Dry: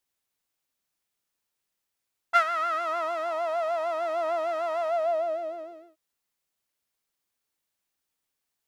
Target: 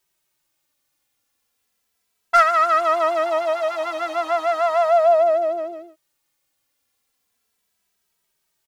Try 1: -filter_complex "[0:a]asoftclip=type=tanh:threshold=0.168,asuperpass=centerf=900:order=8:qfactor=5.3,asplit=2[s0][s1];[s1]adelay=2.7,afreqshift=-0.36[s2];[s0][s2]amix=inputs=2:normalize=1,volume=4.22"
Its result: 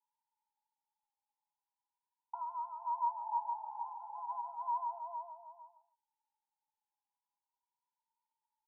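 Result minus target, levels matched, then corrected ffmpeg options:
1 kHz band +4.0 dB
-filter_complex "[0:a]asoftclip=type=tanh:threshold=0.168,asplit=2[s0][s1];[s1]adelay=2.7,afreqshift=-0.36[s2];[s0][s2]amix=inputs=2:normalize=1,volume=4.22"

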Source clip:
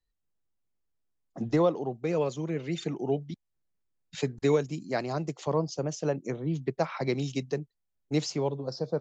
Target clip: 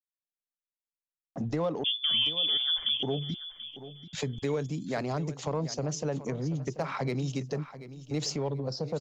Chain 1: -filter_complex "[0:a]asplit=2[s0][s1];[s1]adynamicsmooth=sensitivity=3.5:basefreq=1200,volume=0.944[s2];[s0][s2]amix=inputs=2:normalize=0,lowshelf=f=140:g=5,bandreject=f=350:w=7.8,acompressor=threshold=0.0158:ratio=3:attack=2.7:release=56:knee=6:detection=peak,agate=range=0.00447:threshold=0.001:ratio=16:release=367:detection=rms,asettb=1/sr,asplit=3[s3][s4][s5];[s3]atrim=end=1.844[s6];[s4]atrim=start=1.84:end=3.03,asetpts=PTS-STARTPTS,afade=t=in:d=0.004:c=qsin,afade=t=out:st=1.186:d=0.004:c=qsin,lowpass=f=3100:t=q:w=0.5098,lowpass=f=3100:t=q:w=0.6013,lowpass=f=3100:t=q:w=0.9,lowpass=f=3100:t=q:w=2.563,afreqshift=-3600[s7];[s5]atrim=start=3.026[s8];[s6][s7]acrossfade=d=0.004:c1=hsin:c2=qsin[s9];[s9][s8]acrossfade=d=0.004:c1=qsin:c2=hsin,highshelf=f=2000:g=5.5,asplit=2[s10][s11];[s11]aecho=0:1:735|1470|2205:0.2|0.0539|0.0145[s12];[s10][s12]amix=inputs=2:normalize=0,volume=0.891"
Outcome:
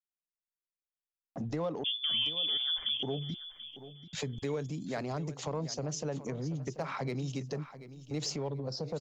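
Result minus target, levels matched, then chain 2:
compression: peak gain reduction +4.5 dB
-filter_complex "[0:a]asplit=2[s0][s1];[s1]adynamicsmooth=sensitivity=3.5:basefreq=1200,volume=0.944[s2];[s0][s2]amix=inputs=2:normalize=0,lowshelf=f=140:g=5,bandreject=f=350:w=7.8,acompressor=threshold=0.0335:ratio=3:attack=2.7:release=56:knee=6:detection=peak,agate=range=0.00447:threshold=0.001:ratio=16:release=367:detection=rms,asettb=1/sr,asplit=3[s3][s4][s5];[s3]atrim=end=1.844[s6];[s4]atrim=start=1.84:end=3.03,asetpts=PTS-STARTPTS,afade=t=in:d=0.004:c=qsin,afade=t=out:st=1.186:d=0.004:c=qsin,lowpass=f=3100:t=q:w=0.5098,lowpass=f=3100:t=q:w=0.6013,lowpass=f=3100:t=q:w=0.9,lowpass=f=3100:t=q:w=2.563,afreqshift=-3600[s7];[s5]atrim=start=3.026[s8];[s6][s7]acrossfade=d=0.004:c1=hsin:c2=qsin[s9];[s9][s8]acrossfade=d=0.004:c1=qsin:c2=hsin,highshelf=f=2000:g=5.5,asplit=2[s10][s11];[s11]aecho=0:1:735|1470|2205:0.2|0.0539|0.0145[s12];[s10][s12]amix=inputs=2:normalize=0,volume=0.891"

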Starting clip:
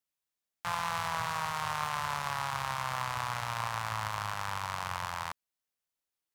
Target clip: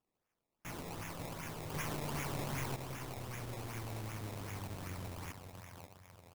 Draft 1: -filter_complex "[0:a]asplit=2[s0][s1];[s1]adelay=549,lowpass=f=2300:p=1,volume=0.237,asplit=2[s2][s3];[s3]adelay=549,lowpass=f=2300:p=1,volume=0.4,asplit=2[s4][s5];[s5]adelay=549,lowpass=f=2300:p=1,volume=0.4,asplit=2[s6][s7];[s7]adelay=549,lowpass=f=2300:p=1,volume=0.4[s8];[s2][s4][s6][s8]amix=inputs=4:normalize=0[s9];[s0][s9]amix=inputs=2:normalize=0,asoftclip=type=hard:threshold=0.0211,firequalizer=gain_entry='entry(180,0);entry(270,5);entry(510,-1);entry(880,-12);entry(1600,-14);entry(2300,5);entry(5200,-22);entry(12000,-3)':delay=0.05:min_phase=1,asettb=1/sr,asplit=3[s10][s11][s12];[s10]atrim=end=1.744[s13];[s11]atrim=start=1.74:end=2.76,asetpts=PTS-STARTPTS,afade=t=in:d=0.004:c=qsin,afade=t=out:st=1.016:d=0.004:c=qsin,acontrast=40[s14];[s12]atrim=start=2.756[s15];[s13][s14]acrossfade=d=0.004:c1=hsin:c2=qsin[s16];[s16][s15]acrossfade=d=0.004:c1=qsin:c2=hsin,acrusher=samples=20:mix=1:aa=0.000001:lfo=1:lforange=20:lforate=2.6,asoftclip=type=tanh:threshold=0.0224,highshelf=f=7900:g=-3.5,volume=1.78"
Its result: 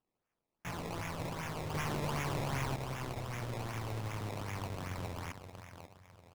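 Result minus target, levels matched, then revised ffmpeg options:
8 kHz band -4.0 dB; hard clipper: distortion -5 dB
-filter_complex "[0:a]asplit=2[s0][s1];[s1]adelay=549,lowpass=f=2300:p=1,volume=0.237,asplit=2[s2][s3];[s3]adelay=549,lowpass=f=2300:p=1,volume=0.4,asplit=2[s4][s5];[s5]adelay=549,lowpass=f=2300:p=1,volume=0.4,asplit=2[s6][s7];[s7]adelay=549,lowpass=f=2300:p=1,volume=0.4[s8];[s2][s4][s6][s8]amix=inputs=4:normalize=0[s9];[s0][s9]amix=inputs=2:normalize=0,asoftclip=type=hard:threshold=0.00708,firequalizer=gain_entry='entry(180,0);entry(270,5);entry(510,-1);entry(880,-12);entry(1600,-14);entry(2300,5);entry(5200,-22);entry(12000,-3)':delay=0.05:min_phase=1,asettb=1/sr,asplit=3[s10][s11][s12];[s10]atrim=end=1.744[s13];[s11]atrim=start=1.74:end=2.76,asetpts=PTS-STARTPTS,afade=t=in:d=0.004:c=qsin,afade=t=out:st=1.016:d=0.004:c=qsin,acontrast=40[s14];[s12]atrim=start=2.756[s15];[s13][s14]acrossfade=d=0.004:c1=hsin:c2=qsin[s16];[s16][s15]acrossfade=d=0.004:c1=qsin:c2=hsin,acrusher=samples=20:mix=1:aa=0.000001:lfo=1:lforange=20:lforate=2.6,asoftclip=type=tanh:threshold=0.0224,highshelf=f=7900:g=7,volume=1.78"

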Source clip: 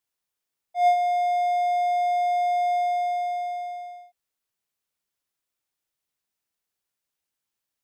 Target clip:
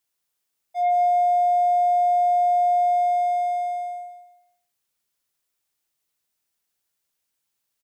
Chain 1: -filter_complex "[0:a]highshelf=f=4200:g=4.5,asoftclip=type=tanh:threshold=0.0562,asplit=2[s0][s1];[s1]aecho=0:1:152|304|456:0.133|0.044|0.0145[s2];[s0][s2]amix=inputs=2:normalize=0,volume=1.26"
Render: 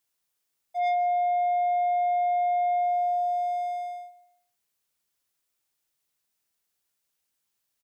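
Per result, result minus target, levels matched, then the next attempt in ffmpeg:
echo-to-direct -10.5 dB; saturation: distortion +6 dB
-filter_complex "[0:a]highshelf=f=4200:g=4.5,asoftclip=type=tanh:threshold=0.0562,asplit=2[s0][s1];[s1]aecho=0:1:152|304|456|608:0.447|0.147|0.0486|0.0161[s2];[s0][s2]amix=inputs=2:normalize=0,volume=1.26"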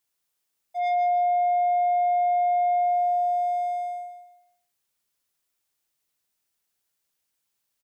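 saturation: distortion +6 dB
-filter_complex "[0:a]highshelf=f=4200:g=4.5,asoftclip=type=tanh:threshold=0.112,asplit=2[s0][s1];[s1]aecho=0:1:152|304|456|608:0.447|0.147|0.0486|0.0161[s2];[s0][s2]amix=inputs=2:normalize=0,volume=1.26"

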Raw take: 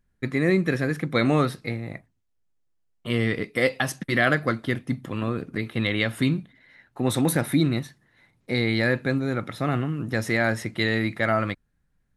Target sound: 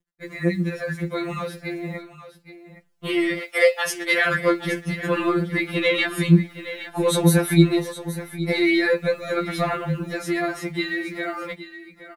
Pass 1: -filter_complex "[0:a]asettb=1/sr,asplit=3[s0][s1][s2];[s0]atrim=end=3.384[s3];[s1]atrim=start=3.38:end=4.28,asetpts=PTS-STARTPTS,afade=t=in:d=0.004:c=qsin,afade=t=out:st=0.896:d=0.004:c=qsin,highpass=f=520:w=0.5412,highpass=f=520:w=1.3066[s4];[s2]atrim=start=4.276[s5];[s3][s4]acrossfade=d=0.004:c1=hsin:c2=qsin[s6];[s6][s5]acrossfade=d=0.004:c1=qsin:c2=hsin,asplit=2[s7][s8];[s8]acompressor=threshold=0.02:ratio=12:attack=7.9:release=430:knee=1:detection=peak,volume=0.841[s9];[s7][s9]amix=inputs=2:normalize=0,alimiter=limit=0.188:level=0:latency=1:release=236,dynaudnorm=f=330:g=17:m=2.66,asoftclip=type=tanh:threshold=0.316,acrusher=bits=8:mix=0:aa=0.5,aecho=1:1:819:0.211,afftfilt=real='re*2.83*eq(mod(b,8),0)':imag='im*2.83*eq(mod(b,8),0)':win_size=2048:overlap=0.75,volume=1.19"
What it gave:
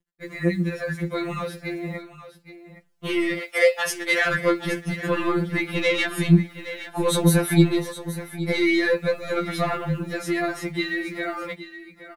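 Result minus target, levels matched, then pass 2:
saturation: distortion +14 dB
-filter_complex "[0:a]asettb=1/sr,asplit=3[s0][s1][s2];[s0]atrim=end=3.384[s3];[s1]atrim=start=3.38:end=4.28,asetpts=PTS-STARTPTS,afade=t=in:d=0.004:c=qsin,afade=t=out:st=0.896:d=0.004:c=qsin,highpass=f=520:w=0.5412,highpass=f=520:w=1.3066[s4];[s2]atrim=start=4.276[s5];[s3][s4]acrossfade=d=0.004:c1=hsin:c2=qsin[s6];[s6][s5]acrossfade=d=0.004:c1=qsin:c2=hsin,asplit=2[s7][s8];[s8]acompressor=threshold=0.02:ratio=12:attack=7.9:release=430:knee=1:detection=peak,volume=0.841[s9];[s7][s9]amix=inputs=2:normalize=0,alimiter=limit=0.188:level=0:latency=1:release=236,dynaudnorm=f=330:g=17:m=2.66,asoftclip=type=tanh:threshold=0.841,acrusher=bits=8:mix=0:aa=0.5,aecho=1:1:819:0.211,afftfilt=real='re*2.83*eq(mod(b,8),0)':imag='im*2.83*eq(mod(b,8),0)':win_size=2048:overlap=0.75,volume=1.19"

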